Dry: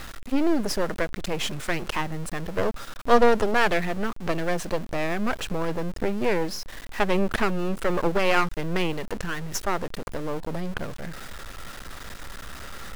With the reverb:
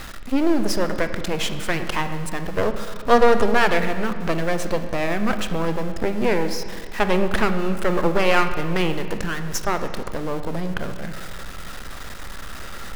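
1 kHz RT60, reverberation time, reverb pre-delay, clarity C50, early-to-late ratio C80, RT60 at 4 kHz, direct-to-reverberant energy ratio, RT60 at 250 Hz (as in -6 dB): 1.8 s, 1.8 s, 15 ms, 9.5 dB, 10.5 dB, 1.5 s, 8.0 dB, 2.0 s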